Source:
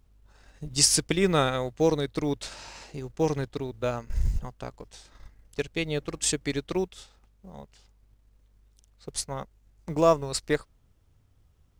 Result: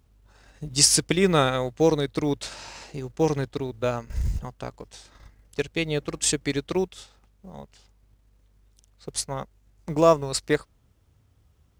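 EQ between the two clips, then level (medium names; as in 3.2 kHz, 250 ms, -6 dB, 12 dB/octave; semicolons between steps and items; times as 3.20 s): high-pass 47 Hz; +3.0 dB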